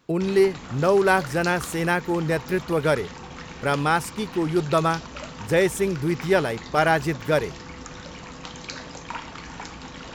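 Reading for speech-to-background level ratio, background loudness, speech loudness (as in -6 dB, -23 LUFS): 14.5 dB, -37.5 LUFS, -23.0 LUFS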